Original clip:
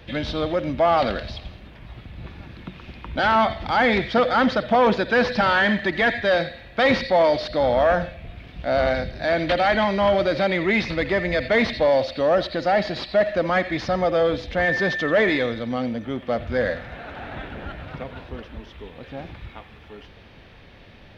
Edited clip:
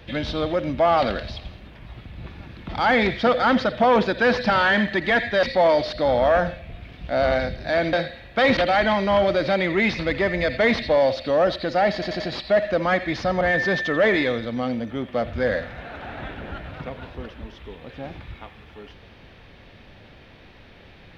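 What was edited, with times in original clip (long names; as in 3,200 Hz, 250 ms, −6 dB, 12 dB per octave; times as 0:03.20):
0:02.69–0:03.60: remove
0:06.34–0:06.98: move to 0:09.48
0:12.84: stutter 0.09 s, 4 plays
0:14.05–0:14.55: remove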